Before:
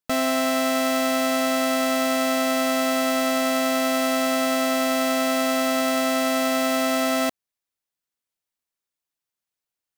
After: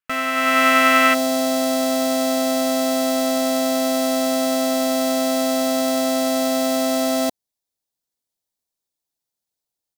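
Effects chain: AGC gain up to 10 dB; band shelf 1800 Hz +11 dB, from 1.13 s -8 dB; gain -6.5 dB

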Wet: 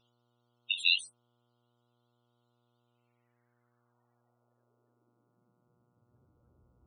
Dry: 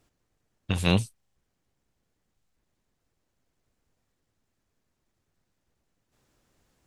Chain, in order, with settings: high-pass sweep 3200 Hz -> 63 Hz, 2.8–6.54; loudest bins only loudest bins 16; buzz 120 Hz, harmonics 12, -78 dBFS -4 dB/oct; gain +2 dB

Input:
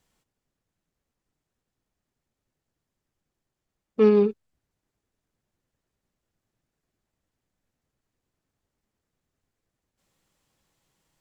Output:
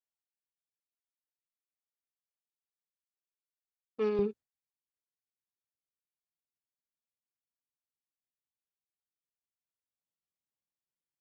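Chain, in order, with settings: gate with hold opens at -42 dBFS; HPF 520 Hz 6 dB/oct, from 4.19 s 85 Hz; gain -8.5 dB

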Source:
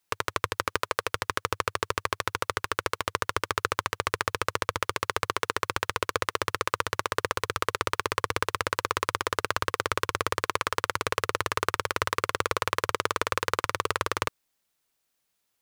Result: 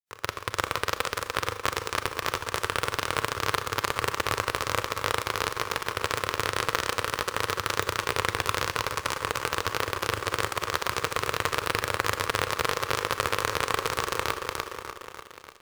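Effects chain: grains 0.1 s, grains 20/s; feedback echo 0.296 s, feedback 57%, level -3.5 dB; in parallel at -7 dB: companded quantiser 2-bit; on the sum: Schroeder reverb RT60 0.8 s, combs from 29 ms, DRR 13 dB; gain -5 dB

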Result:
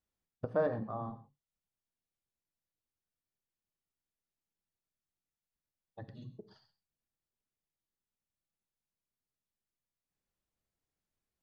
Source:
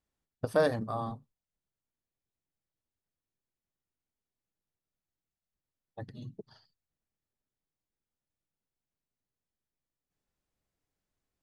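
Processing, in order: treble ducked by the level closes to 1500 Hz, closed at -33.5 dBFS; non-linear reverb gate 0.15 s flat, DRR 11 dB; gain -5 dB

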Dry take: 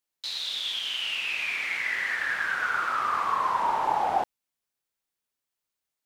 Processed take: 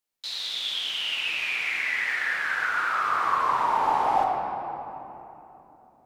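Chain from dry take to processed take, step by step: 1.57–3.09 low shelf 370 Hz -6.5 dB; shoebox room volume 180 m³, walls hard, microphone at 0.5 m; gain -1 dB

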